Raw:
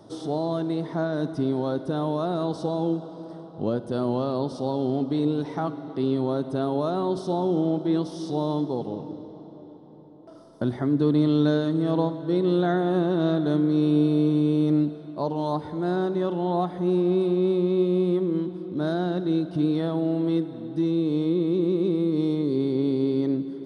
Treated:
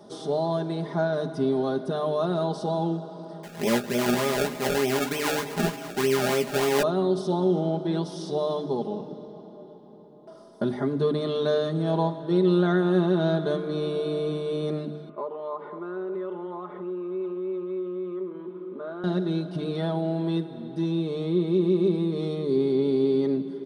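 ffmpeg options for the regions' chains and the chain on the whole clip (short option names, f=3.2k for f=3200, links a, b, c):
-filter_complex "[0:a]asettb=1/sr,asplit=3[a][b][c];[a]atrim=end=3.434[d];[b]atrim=start=3.43:end=6.83,asetpts=PTS-STARTPTS,afade=t=in:d=0.004:c=qsin,afade=t=out:st=3.396:d=0.004:c=qsin,acrusher=samples=30:mix=1:aa=0.000001:lfo=1:lforange=30:lforate=3.3,asplit=2[e][f];[f]adelay=17,volume=-6.5dB[g];[e][g]amix=inputs=2:normalize=0,atrim=end_sample=149940[h];[c]atrim=start=6.826[i];[d][h]acrossfade=d=0.004:c1=hsin:c2=qsin[j];[j][i]acrossfade=d=0.004:c1=qsin:c2=hsin,asettb=1/sr,asplit=3[k][l][m];[k]atrim=end=15.094[n];[l]atrim=start=15.09:end=19.04,asetpts=PTS-STARTPTS,afade=t=in:d=0.004:c=qsin,afade=t=out:st=3.946:d=0.004:c=qsin,acompressor=threshold=-27dB:ratio=6:attack=3.2:release=140:knee=1:detection=peak,highpass=390,equalizer=f=410:t=q:w=4:g=3,equalizer=f=750:t=q:w=4:g=-7,equalizer=f=1.2k:t=q:w=4:g=7,equalizer=f=1.7k:t=q:w=4:g=-6,lowpass=f=2.4k:w=0.5412,lowpass=f=2.4k:w=1.3066[o];[m]atrim=start=19.036[p];[n][o]acrossfade=d=0.004:c1=hsin:c2=qsin[q];[q][p]acrossfade=d=0.004:c1=qsin:c2=hsin,lowshelf=f=65:g=-9.5,bandreject=f=50:t=h:w=6,bandreject=f=100:t=h:w=6,bandreject=f=150:t=h:w=6,bandreject=f=200:t=h:w=6,bandreject=f=250:t=h:w=6,bandreject=f=300:t=h:w=6,aecho=1:1:4.9:0.69"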